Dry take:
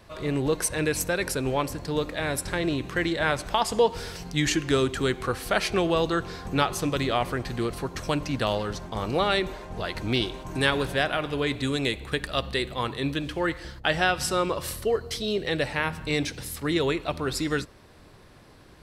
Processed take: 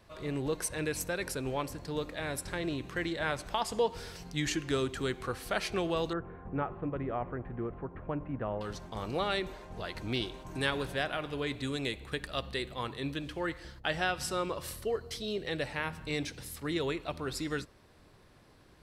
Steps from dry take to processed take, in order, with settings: 6.13–8.61 Gaussian blur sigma 5.1 samples; gain -8 dB

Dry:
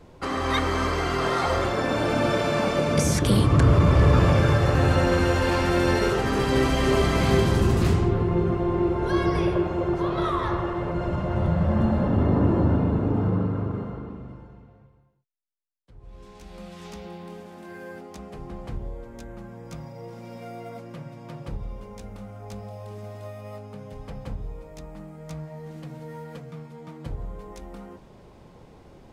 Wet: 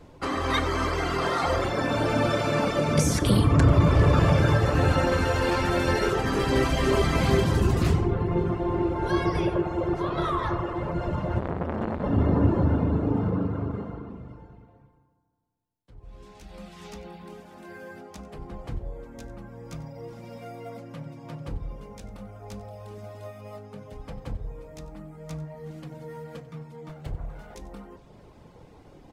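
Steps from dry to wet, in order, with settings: 26.89–27.55 minimum comb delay 1.4 ms; reverb removal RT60 0.7 s; echo 93 ms -18 dB; FDN reverb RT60 1.9 s, low-frequency decay 1×, high-frequency decay 0.3×, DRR 10 dB; 11.39–12.04 core saturation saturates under 780 Hz

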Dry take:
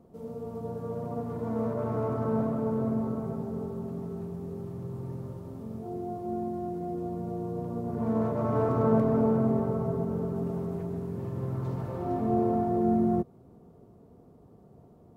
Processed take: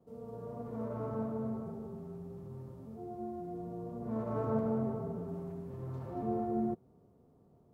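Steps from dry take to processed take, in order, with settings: gate with hold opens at -52 dBFS; time stretch by phase-locked vocoder 0.51×; gain -7.5 dB

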